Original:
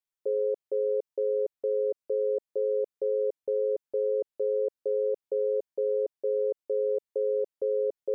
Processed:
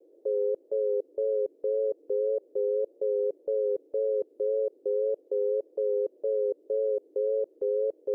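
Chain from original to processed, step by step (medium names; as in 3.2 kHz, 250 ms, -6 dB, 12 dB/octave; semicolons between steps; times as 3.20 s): band noise 300–530 Hz -59 dBFS; vibrato 1.8 Hz 54 cents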